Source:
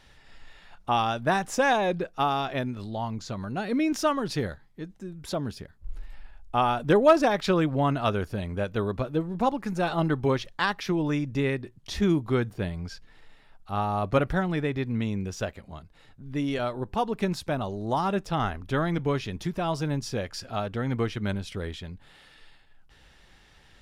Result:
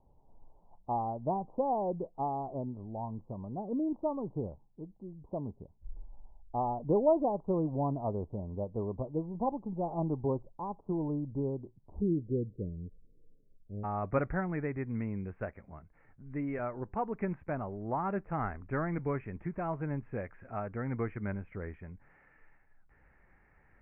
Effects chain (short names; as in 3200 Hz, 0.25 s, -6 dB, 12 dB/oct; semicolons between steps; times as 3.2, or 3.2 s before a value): steep low-pass 1000 Hz 72 dB/oct, from 12 s 530 Hz, from 13.83 s 2300 Hz; gain -7 dB